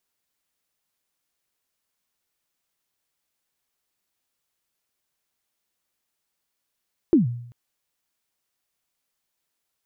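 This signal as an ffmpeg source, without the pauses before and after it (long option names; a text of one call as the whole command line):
ffmpeg -f lavfi -i "aevalsrc='0.316*pow(10,-3*t/0.69)*sin(2*PI*(370*0.136/log(120/370)*(exp(log(120/370)*min(t,0.136)/0.136)-1)+120*max(t-0.136,0)))':duration=0.39:sample_rate=44100" out.wav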